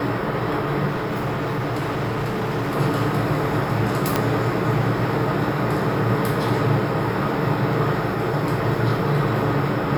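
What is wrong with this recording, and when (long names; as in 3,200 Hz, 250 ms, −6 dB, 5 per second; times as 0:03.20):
0:00.87–0:02.76: clipping −20.5 dBFS
0:04.16: click −4 dBFS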